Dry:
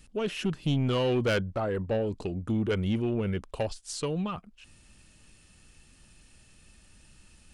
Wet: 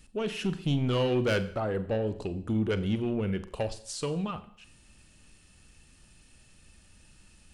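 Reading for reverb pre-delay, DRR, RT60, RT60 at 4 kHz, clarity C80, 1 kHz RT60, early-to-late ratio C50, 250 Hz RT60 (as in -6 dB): 36 ms, 11.5 dB, 0.60 s, 0.55 s, 17.0 dB, 0.60 s, 15.0 dB, 0.60 s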